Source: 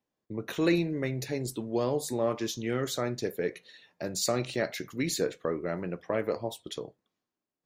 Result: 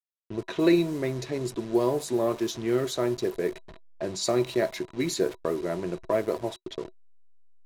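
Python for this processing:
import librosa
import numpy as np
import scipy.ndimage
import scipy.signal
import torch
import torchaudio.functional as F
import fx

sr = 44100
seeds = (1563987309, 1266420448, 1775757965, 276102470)

y = fx.delta_hold(x, sr, step_db=-40.0)
y = fx.small_body(y, sr, hz=(370.0, 650.0, 980.0, 3900.0), ring_ms=70, db=11)
y = fx.env_lowpass(y, sr, base_hz=2600.0, full_db=-23.5)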